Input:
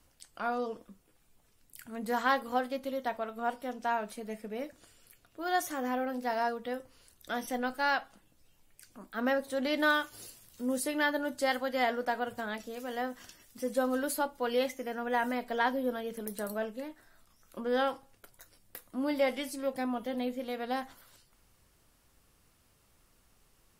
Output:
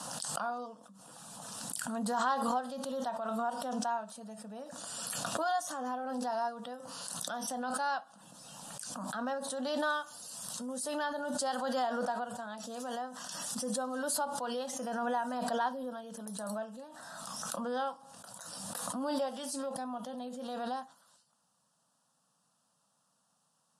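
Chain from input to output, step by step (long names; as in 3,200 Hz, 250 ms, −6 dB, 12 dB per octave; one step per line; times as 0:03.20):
elliptic band-pass filter 170–9,700 Hz, stop band 40 dB
phaser with its sweep stopped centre 900 Hz, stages 4
background raised ahead of every attack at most 21 dB per second
level −2 dB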